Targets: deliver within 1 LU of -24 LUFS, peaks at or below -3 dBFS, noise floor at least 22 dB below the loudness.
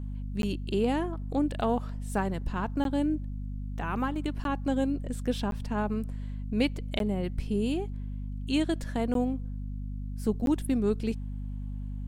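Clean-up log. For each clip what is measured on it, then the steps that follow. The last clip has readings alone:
dropouts 7; longest dropout 12 ms; hum 50 Hz; harmonics up to 250 Hz; hum level -33 dBFS; loudness -31.0 LUFS; peak -12.0 dBFS; loudness target -24.0 LUFS
-> interpolate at 0.42/2.84/4.44/5.51/6.99/9.14/10.46, 12 ms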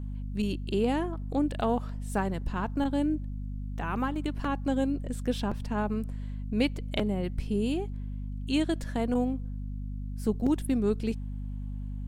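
dropouts 0; hum 50 Hz; harmonics up to 250 Hz; hum level -33 dBFS
-> de-hum 50 Hz, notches 5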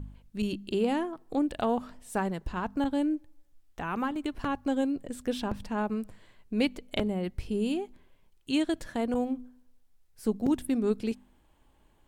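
hum none; loudness -31.5 LUFS; peak -13.0 dBFS; loudness target -24.0 LUFS
-> gain +7.5 dB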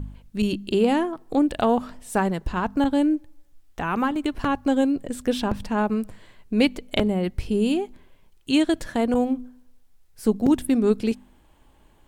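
loudness -24.0 LUFS; peak -5.5 dBFS; noise floor -56 dBFS

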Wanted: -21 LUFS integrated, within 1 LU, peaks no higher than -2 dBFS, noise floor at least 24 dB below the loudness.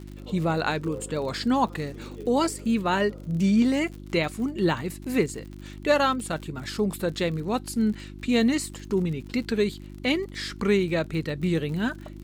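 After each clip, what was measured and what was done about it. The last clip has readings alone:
ticks 55/s; hum 50 Hz; harmonics up to 350 Hz; hum level -38 dBFS; loudness -26.5 LUFS; peak -10.0 dBFS; loudness target -21.0 LUFS
-> de-click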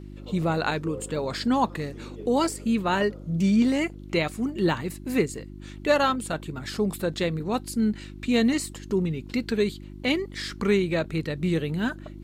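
ticks 0/s; hum 50 Hz; harmonics up to 350 Hz; hum level -38 dBFS
-> de-hum 50 Hz, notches 7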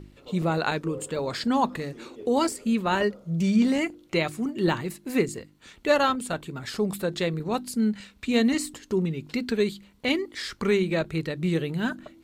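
hum none; loudness -26.5 LUFS; peak -10.0 dBFS; loudness target -21.0 LUFS
-> gain +5.5 dB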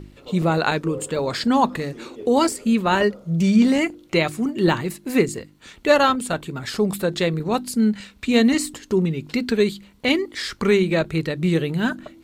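loudness -21.0 LUFS; peak -4.5 dBFS; noise floor -50 dBFS

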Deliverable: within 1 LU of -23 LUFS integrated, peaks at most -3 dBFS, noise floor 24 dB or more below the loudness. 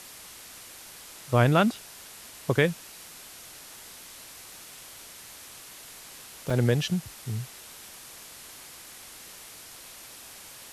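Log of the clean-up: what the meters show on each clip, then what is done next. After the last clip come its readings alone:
dropouts 1; longest dropout 4.7 ms; noise floor -47 dBFS; noise floor target -51 dBFS; loudness -26.5 LUFS; peak -7.0 dBFS; loudness target -23.0 LUFS
-> interpolate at 6.5, 4.7 ms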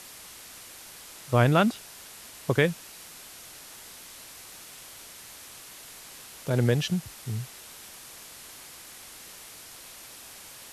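dropouts 0; noise floor -47 dBFS; noise floor target -51 dBFS
-> noise print and reduce 6 dB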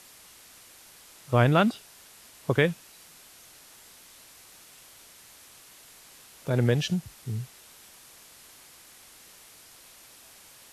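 noise floor -53 dBFS; loudness -26.5 LUFS; peak -7.0 dBFS; loudness target -23.0 LUFS
-> gain +3.5 dB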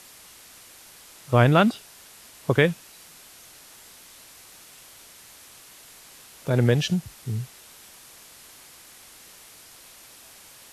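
loudness -23.0 LUFS; peak -3.5 dBFS; noise floor -49 dBFS

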